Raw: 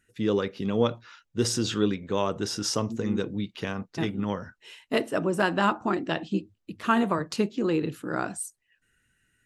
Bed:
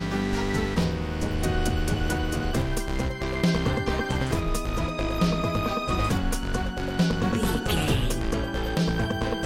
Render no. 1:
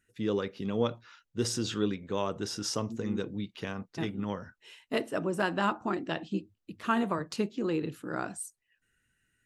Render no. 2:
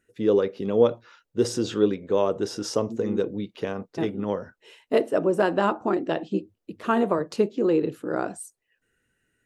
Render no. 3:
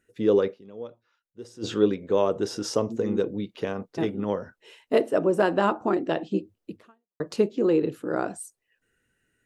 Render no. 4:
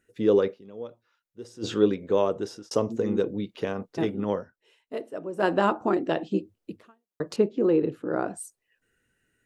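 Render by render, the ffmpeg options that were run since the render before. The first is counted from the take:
ffmpeg -i in.wav -af "volume=-5dB" out.wav
ffmpeg -i in.wav -af "equalizer=frequency=480:width_type=o:width=1.7:gain=12" out.wav
ffmpeg -i in.wav -filter_complex "[0:a]asplit=4[link_01][link_02][link_03][link_04];[link_01]atrim=end=0.68,asetpts=PTS-STARTPTS,afade=type=out:start_time=0.53:duration=0.15:curve=exp:silence=0.112202[link_05];[link_02]atrim=start=0.68:end=1.49,asetpts=PTS-STARTPTS,volume=-19dB[link_06];[link_03]atrim=start=1.49:end=7.2,asetpts=PTS-STARTPTS,afade=type=in:duration=0.15:curve=exp:silence=0.112202,afade=type=out:start_time=5.27:duration=0.44:curve=exp[link_07];[link_04]atrim=start=7.2,asetpts=PTS-STARTPTS,afade=type=in:duration=0.004:curve=hsin[link_08];[link_05][link_06][link_07][link_08]concat=n=4:v=0:a=1" out.wav
ffmpeg -i in.wav -filter_complex "[0:a]asettb=1/sr,asplit=3[link_01][link_02][link_03];[link_01]atrim=end=7.364[link_04];[link_02]atrim=start=7.36:end=8.37,asetpts=PTS-STARTPTS,afade=type=in:duration=0.004:curve=qsin,afade=type=out:start_time=1.006:duration=0.004:curve=qsin,lowpass=frequency=2000:poles=1[link_05];[link_03]atrim=start=8.366[link_06];[link_04][link_05]acrossfade=duration=0.004:curve1=hsin:curve2=qsin[link_07];[link_07][link_06]acrossfade=duration=0.004:curve1=qsin:curve2=hsin,asplit=4[link_08][link_09][link_10][link_11];[link_08]atrim=end=2.71,asetpts=PTS-STARTPTS,afade=type=out:start_time=2.04:duration=0.67:curve=qsin[link_12];[link_09]atrim=start=2.71:end=4.76,asetpts=PTS-STARTPTS,afade=type=in:duration=0.004:curve=hsin,afade=type=out:start_time=1.69:duration=0.36:curve=exp:silence=0.237137[link_13];[link_10]atrim=start=4.76:end=5.08,asetpts=PTS-STARTPTS,volume=-12.5dB[link_14];[link_11]atrim=start=5.08,asetpts=PTS-STARTPTS,afade=type=in:duration=0.36:curve=exp:silence=0.237137[link_15];[link_12][link_13][link_14][link_15]concat=n=4:v=0:a=1" out.wav

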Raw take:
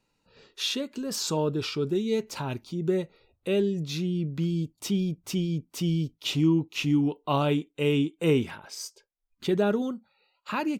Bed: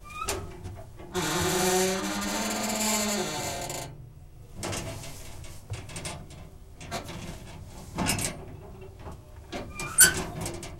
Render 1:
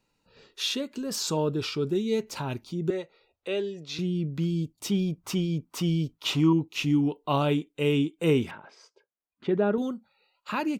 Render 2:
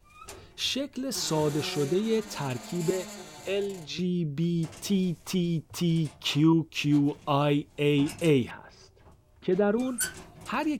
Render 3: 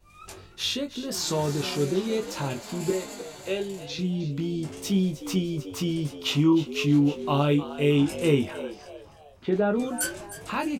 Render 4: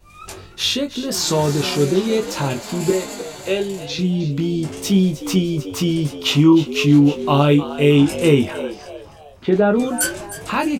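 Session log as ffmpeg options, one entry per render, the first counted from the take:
ffmpeg -i in.wav -filter_complex "[0:a]asettb=1/sr,asplit=3[link_01][link_02][link_03];[link_01]atrim=end=2.904[link_04];[link_02]atrim=start=2.9:end=3.99,asetpts=PTS-STARTPTS,afade=type=in:duration=0.004:curve=qsin,afade=type=out:start_time=1.086:duration=0.004:curve=qsin,acrossover=split=380 7400:gain=0.178 1 0.141[link_05][link_06][link_07];[link_05][link_06][link_07]amix=inputs=3:normalize=0[link_08];[link_03]atrim=start=3.986[link_09];[link_04][link_08]acrossfade=duration=0.004:curve1=hsin:curve2=qsin[link_10];[link_10][link_09]acrossfade=duration=0.004:curve1=qsin:curve2=hsin,asettb=1/sr,asplit=3[link_11][link_12][link_13];[link_11]atrim=end=4.914[link_14];[link_12]atrim=start=4.91:end=6.53,asetpts=PTS-STARTPTS,afade=type=in:duration=0.004:curve=qsin,afade=type=out:start_time=1.616:duration=0.004:curve=qsin,equalizer=frequency=1100:width_type=o:width=1.2:gain=11[link_15];[link_13]atrim=start=6.526[link_16];[link_14][link_15]acrossfade=duration=0.004:curve1=hsin:curve2=qsin[link_17];[link_17][link_16]acrossfade=duration=0.004:curve1=qsin:curve2=hsin,asettb=1/sr,asplit=3[link_18][link_19][link_20];[link_18]atrim=end=8.514[link_21];[link_19]atrim=start=8.51:end=9.78,asetpts=PTS-STARTPTS,afade=type=in:duration=0.004:curve=qsin,afade=type=out:start_time=1.266:duration=0.004:curve=qsin,highpass=140,lowpass=2000[link_22];[link_20]atrim=start=9.776[link_23];[link_21][link_22]acrossfade=duration=0.004:curve1=hsin:curve2=qsin[link_24];[link_24][link_23]acrossfade=duration=0.004:curve1=qsin:curve2=hsin" out.wav
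ffmpeg -i in.wav -i bed.wav -filter_complex "[1:a]volume=-13.5dB[link_01];[0:a][link_01]amix=inputs=2:normalize=0" out.wav
ffmpeg -i in.wav -filter_complex "[0:a]asplit=2[link_01][link_02];[link_02]adelay=21,volume=-5dB[link_03];[link_01][link_03]amix=inputs=2:normalize=0,asplit=5[link_04][link_05][link_06][link_07][link_08];[link_05]adelay=309,afreqshift=99,volume=-14dB[link_09];[link_06]adelay=618,afreqshift=198,volume=-22.6dB[link_10];[link_07]adelay=927,afreqshift=297,volume=-31.3dB[link_11];[link_08]adelay=1236,afreqshift=396,volume=-39.9dB[link_12];[link_04][link_09][link_10][link_11][link_12]amix=inputs=5:normalize=0" out.wav
ffmpeg -i in.wav -af "volume=8.5dB,alimiter=limit=-3dB:level=0:latency=1" out.wav

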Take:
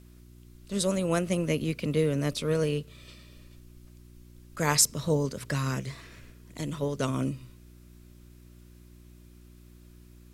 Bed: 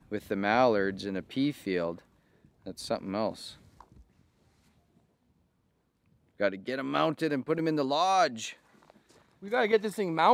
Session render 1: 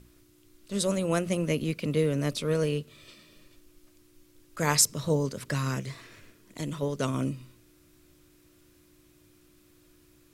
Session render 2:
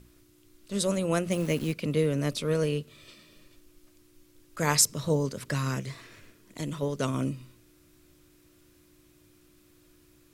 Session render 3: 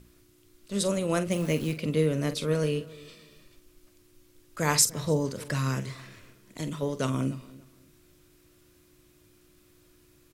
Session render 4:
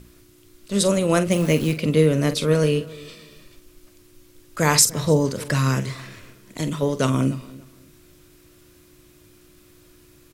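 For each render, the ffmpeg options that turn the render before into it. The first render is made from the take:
ffmpeg -i in.wav -af "bandreject=frequency=60:width_type=h:width=4,bandreject=frequency=120:width_type=h:width=4,bandreject=frequency=180:width_type=h:width=4,bandreject=frequency=240:width_type=h:width=4" out.wav
ffmpeg -i in.wav -filter_complex "[0:a]asplit=3[link_01][link_02][link_03];[link_01]afade=type=out:start_time=1.3:duration=0.02[link_04];[link_02]acrusher=bits=8:dc=4:mix=0:aa=0.000001,afade=type=in:start_time=1.3:duration=0.02,afade=type=out:start_time=1.72:duration=0.02[link_05];[link_03]afade=type=in:start_time=1.72:duration=0.02[link_06];[link_04][link_05][link_06]amix=inputs=3:normalize=0" out.wav
ffmpeg -i in.wav -filter_complex "[0:a]asplit=2[link_01][link_02];[link_02]adelay=45,volume=-11.5dB[link_03];[link_01][link_03]amix=inputs=2:normalize=0,asplit=2[link_04][link_05];[link_05]adelay=291,lowpass=frequency=2700:poles=1,volume=-20dB,asplit=2[link_06][link_07];[link_07]adelay=291,lowpass=frequency=2700:poles=1,volume=0.24[link_08];[link_04][link_06][link_08]amix=inputs=3:normalize=0" out.wav
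ffmpeg -i in.wav -af "volume=8dB,alimiter=limit=-3dB:level=0:latency=1" out.wav

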